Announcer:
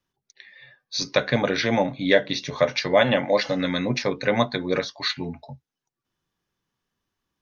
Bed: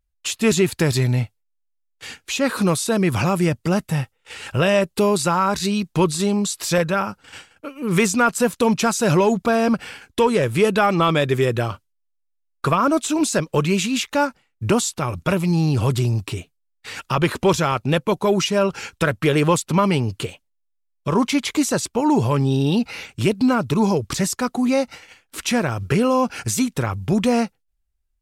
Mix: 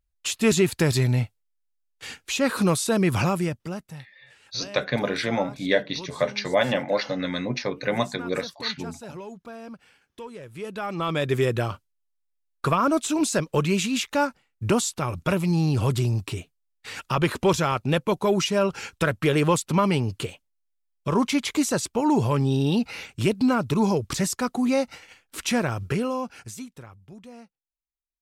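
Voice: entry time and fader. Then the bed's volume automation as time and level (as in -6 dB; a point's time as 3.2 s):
3.60 s, -3.5 dB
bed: 3.24 s -2.5 dB
4.12 s -22 dB
10.44 s -22 dB
11.34 s -3.5 dB
25.74 s -3.5 dB
27.16 s -26.5 dB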